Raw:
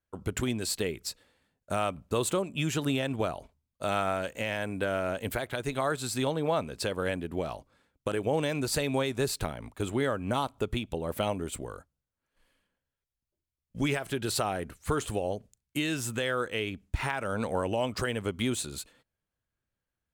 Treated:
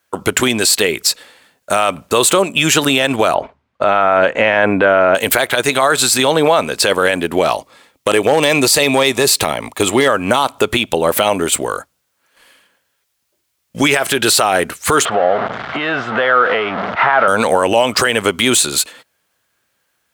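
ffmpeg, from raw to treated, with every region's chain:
-filter_complex "[0:a]asettb=1/sr,asplit=3[a][b][c];[a]atrim=end=3.344[d];[b]atrim=start=3.34:end=5.15,asetpts=PTS-STARTPTS,afade=t=in:d=0.004:c=qsin,afade=t=out:st=1.806:d=0.004:c=qsin,lowpass=1.8k,acontrast=29[e];[c]atrim=start=5.146[f];[d][e]acrossfade=d=0.004:c1=hsin:c2=qsin[g];[g][f]acrossfade=d=0.004:c1=qsin:c2=hsin,asettb=1/sr,asplit=3[h][i][j];[h]atrim=end=7.514[k];[i]atrim=start=7.51:end=10.08,asetpts=PTS-STARTPTS,afade=t=in:d=0.004:c=qsin,afade=t=out:st=2.566:d=0.004:c=qsin,bandreject=f=1.5k:w=5.2,asoftclip=type=hard:threshold=-20.5dB[l];[j]atrim=start=10.076[m];[k][l]acrossfade=d=0.004:c1=hsin:c2=qsin[n];[n][m]acrossfade=d=0.004:c1=qsin:c2=hsin,asettb=1/sr,asplit=3[o][p][q];[o]atrim=end=15.054[r];[p]atrim=start=15.05:end=17.28,asetpts=PTS-STARTPTS,afade=t=in:d=0.004:c=qsin,afade=t=out:st=2.226:d=0.004:c=qsin,aeval=exprs='val(0)+0.5*0.0266*sgn(val(0))':c=same,acompressor=threshold=-33dB:ratio=4:attack=3.2:release=140:knee=1:detection=peak,highpass=140,equalizer=f=310:t=q:w=4:g=-6,equalizer=f=690:t=q:w=4:g=8,equalizer=f=1.3k:t=q:w=4:g=7,equalizer=f=2.5k:t=q:w=4:g=-9,lowpass=f=2.7k:w=0.5412,lowpass=f=2.7k:w=1.3066[s];[q]atrim=start=17.276[t];[r][s]acrossfade=d=0.004:c1=hsin:c2=qsin[u];[u][t]acrossfade=d=0.004:c1=qsin:c2=hsin,highpass=f=780:p=1,alimiter=level_in=26.5dB:limit=-1dB:release=50:level=0:latency=1,volume=-1dB"

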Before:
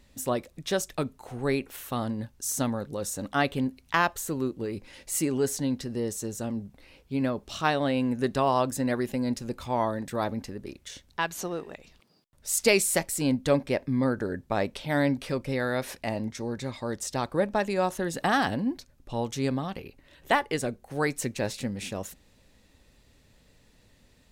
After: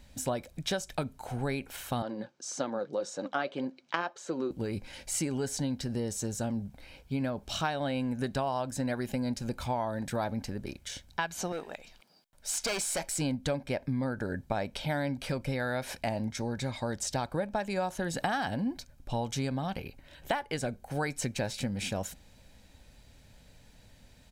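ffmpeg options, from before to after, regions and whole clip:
-filter_complex "[0:a]asettb=1/sr,asplit=3[a][b][c];[a]atrim=end=2.024[d];[b]atrim=start=2.02:end=4.51,asetpts=PTS-STARTPTS,afade=t=in:d=0.004:c=qsin,afade=t=out:st=2.486:d=0.004:c=qsin,highpass=f=180:w=0.5412,highpass=f=180:w=1.3066,equalizer=f=220:t=q:w=4:g=-4,equalizer=f=350:t=q:w=4:g=9,equalizer=f=530:t=q:w=4:g=7,equalizer=f=1.2k:t=q:w=4:g=6,lowpass=f=6.2k:w=0.5412,lowpass=f=6.2k:w=1.3066,flanger=delay=0.9:depth=5.5:regen=66:speed=1.8:shape=triangular[e];[c]atrim=start=4.506[f];[d][e]acrossfade=d=0.004:c1=hsin:c2=qsin[g];[g][f]acrossfade=d=0.004:c1=qsin:c2=hsin,asettb=1/sr,asplit=3[h][i][j];[h]atrim=end=11.524[k];[i]atrim=start=11.52:end=13.19,asetpts=PTS-STARTPTS,afade=t=in:d=0.004:c=qsin,afade=t=out:st=1.666:d=0.004:c=qsin,asoftclip=type=hard:threshold=-26.5dB,equalizer=f=93:t=o:w=2:g=-13.5[l];[j]atrim=start=13.186[m];[k][l]acrossfade=d=0.004:c1=hsin:c2=qsin[n];[n][m]acrossfade=d=0.004:c1=qsin:c2=hsin,acrossover=split=8500[o][p];[p]acompressor=threshold=-48dB:ratio=4:attack=1:release=60[q];[o][q]amix=inputs=2:normalize=0,aecho=1:1:1.3:0.4,acompressor=threshold=-30dB:ratio=6,volume=2dB"

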